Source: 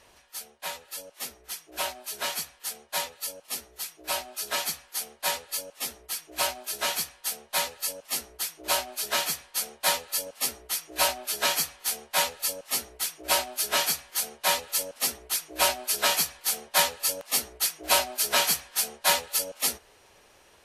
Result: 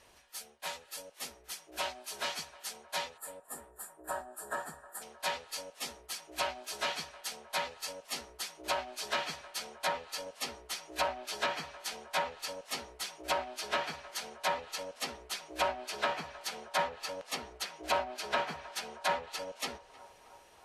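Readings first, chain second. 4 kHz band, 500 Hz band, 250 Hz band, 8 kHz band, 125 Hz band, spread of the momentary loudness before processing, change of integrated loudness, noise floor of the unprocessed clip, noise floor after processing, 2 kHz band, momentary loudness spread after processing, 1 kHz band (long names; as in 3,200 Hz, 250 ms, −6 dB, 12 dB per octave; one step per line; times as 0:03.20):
−10.0 dB, −4.0 dB, −4.0 dB, −15.0 dB, −4.0 dB, 12 LU, −10.0 dB, −59 dBFS, −60 dBFS, −6.5 dB, 10 LU, −4.0 dB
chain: treble cut that deepens with the level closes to 1,500 Hz, closed at −20 dBFS
gain on a spectral selection 0:03.18–0:05.02, 1,900–6,900 Hz −21 dB
on a send: feedback echo with a band-pass in the loop 311 ms, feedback 74%, band-pass 840 Hz, level −17 dB
on the sum: level −4 dB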